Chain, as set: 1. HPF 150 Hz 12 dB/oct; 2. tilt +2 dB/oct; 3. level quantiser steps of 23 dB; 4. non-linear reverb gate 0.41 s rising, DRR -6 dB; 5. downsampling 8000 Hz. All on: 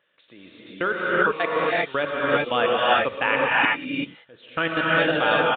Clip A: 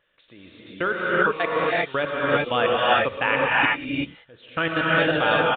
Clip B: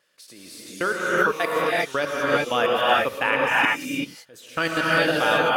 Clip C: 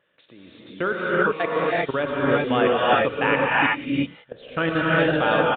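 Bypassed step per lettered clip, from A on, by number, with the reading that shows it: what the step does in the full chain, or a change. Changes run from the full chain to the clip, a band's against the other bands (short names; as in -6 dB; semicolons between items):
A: 1, 125 Hz band +3.0 dB; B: 5, momentary loudness spread change +3 LU; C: 2, 125 Hz band +6.5 dB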